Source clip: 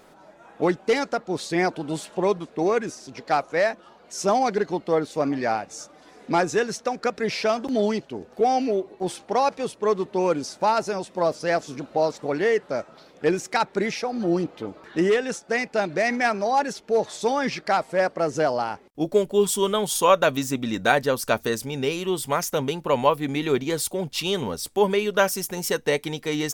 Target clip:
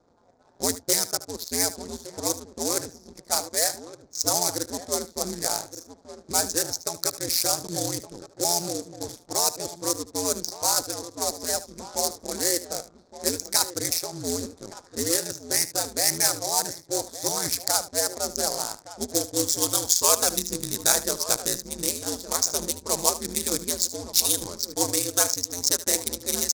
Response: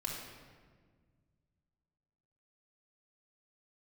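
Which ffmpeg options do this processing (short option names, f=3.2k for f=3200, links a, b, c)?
-filter_complex "[0:a]asplit=2[a][b];[b]adelay=1166,volume=-12dB,highshelf=f=4k:g=-26.2[c];[a][c]amix=inputs=2:normalize=0,aeval=exprs='val(0)*sin(2*PI*87*n/s)':c=same,aresample=16000,acrusher=bits=4:mode=log:mix=0:aa=0.000001,aresample=44100,adynamicsmooth=sensitivity=7:basefreq=670,aexciter=amount=10.4:drive=9.6:freq=4.5k,asplit=2[d][e];[e]aecho=0:1:75:0.178[f];[d][f]amix=inputs=2:normalize=0,volume=-6dB"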